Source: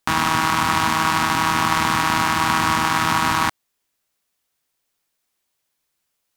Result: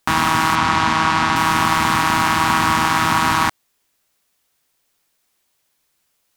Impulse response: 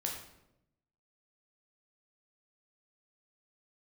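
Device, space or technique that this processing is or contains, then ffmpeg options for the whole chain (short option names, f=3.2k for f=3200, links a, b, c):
clipper into limiter: -filter_complex "[0:a]asoftclip=type=hard:threshold=-7dB,alimiter=limit=-11.5dB:level=0:latency=1:release=22,asettb=1/sr,asplit=3[a][b][c];[a]atrim=end=0.554[d];[b]atrim=start=0.55:end=1.36,asetpts=PTS-STARTPTS,afade=t=in:d=0.004:c=qsin,afade=t=out:st=0.806:d=0.004:c=qsin,lowpass=6.3k[e];[c]atrim=start=1.356[f];[d][e]acrossfade=d=0.004:c1=hsin:c2=qsin[g];[g][f]acrossfade=d=0.004:c1=qsin:c2=hsin,volume=7dB"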